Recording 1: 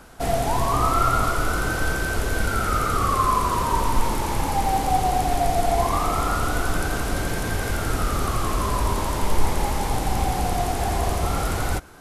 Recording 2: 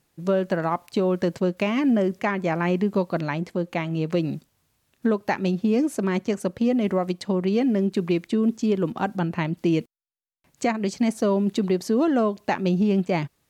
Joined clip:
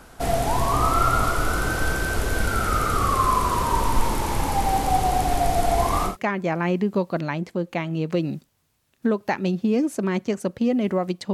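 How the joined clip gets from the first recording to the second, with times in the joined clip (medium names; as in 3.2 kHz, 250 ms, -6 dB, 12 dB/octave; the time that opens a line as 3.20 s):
recording 1
6.10 s: go over to recording 2 from 2.10 s, crossfade 0.14 s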